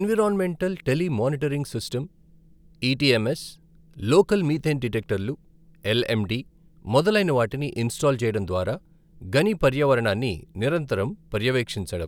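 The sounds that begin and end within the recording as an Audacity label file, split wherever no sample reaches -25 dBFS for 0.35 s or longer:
2.830000	3.340000	sound
4.030000	5.320000	sound
5.850000	6.400000	sound
6.880000	8.750000	sound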